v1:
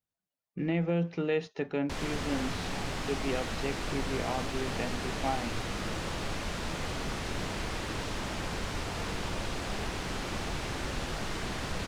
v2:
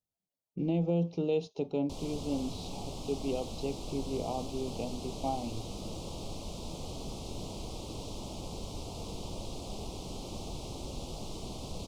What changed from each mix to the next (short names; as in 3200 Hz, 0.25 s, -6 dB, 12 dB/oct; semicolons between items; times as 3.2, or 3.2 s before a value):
background -4.5 dB; master: add Butterworth band-stop 1700 Hz, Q 0.7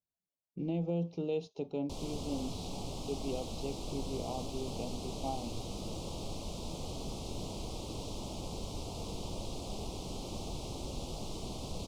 speech -4.5 dB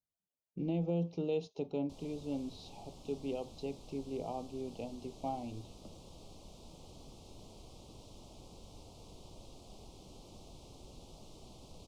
background -11.0 dB; reverb: off